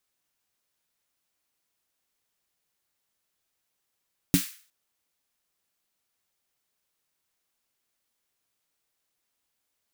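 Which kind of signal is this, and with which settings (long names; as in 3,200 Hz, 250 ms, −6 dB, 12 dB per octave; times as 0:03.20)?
synth snare length 0.36 s, tones 180 Hz, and 280 Hz, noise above 1,500 Hz, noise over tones −9 dB, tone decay 0.12 s, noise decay 0.44 s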